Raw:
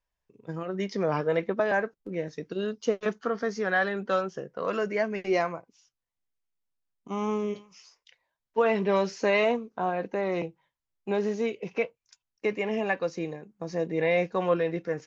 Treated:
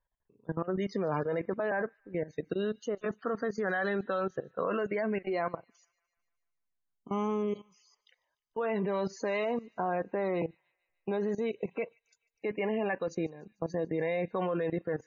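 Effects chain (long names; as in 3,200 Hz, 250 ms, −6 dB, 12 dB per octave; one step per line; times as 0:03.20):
parametric band 2,500 Hz −4.5 dB 0.49 octaves
notch filter 5,400 Hz, Q 5.1
output level in coarse steps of 17 dB
spectral peaks only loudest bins 64
delay with a high-pass on its return 148 ms, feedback 59%, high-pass 2,500 Hz, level −23 dB
level +3.5 dB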